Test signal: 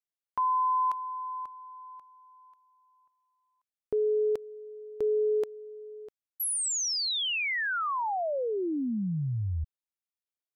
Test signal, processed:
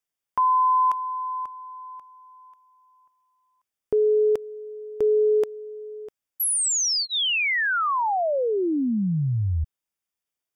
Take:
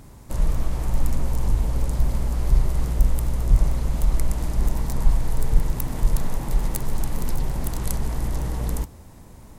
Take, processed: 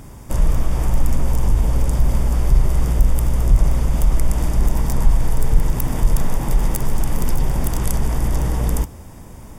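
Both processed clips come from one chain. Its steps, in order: in parallel at +1.5 dB: peak limiter -16 dBFS; on the sum: Butterworth band-stop 4.1 kHz, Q 6.3

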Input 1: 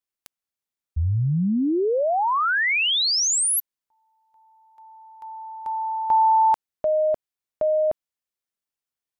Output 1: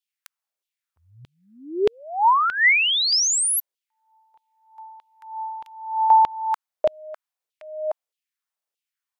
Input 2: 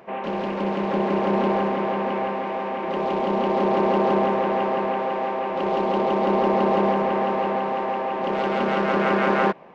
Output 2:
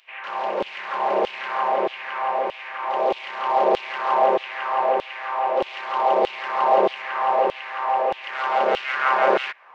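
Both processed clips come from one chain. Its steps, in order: LFO high-pass saw down 1.6 Hz 430–3300 Hz

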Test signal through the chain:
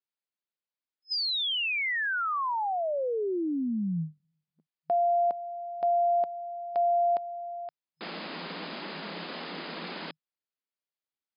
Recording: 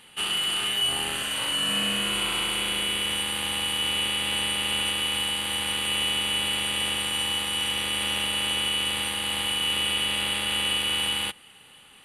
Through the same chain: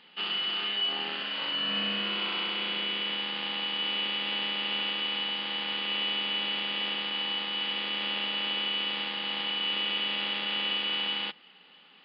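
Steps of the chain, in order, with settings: FFT band-pass 160–5100 Hz; trim -4 dB

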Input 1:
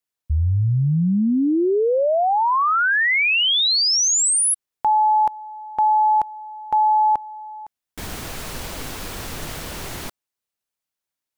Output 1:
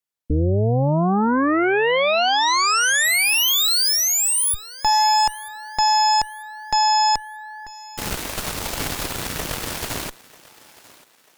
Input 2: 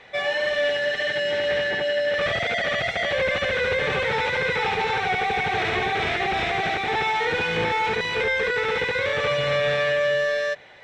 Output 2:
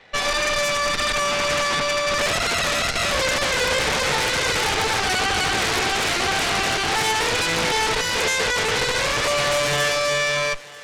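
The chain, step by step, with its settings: Chebyshev shaper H 3 -18 dB, 5 -32 dB, 6 -20 dB, 8 -7 dB, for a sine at -11.5 dBFS; thinning echo 941 ms, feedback 41%, high-pass 300 Hz, level -20 dB

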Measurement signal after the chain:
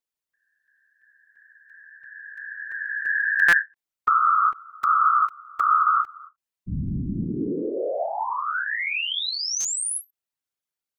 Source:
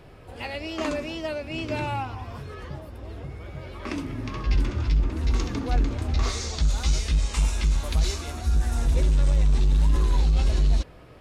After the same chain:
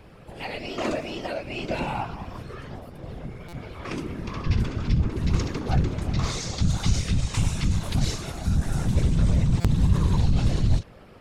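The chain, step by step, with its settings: whisper effect; buffer glitch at 3.48/9.60 s, samples 256, times 7; endings held to a fixed fall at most 420 dB/s

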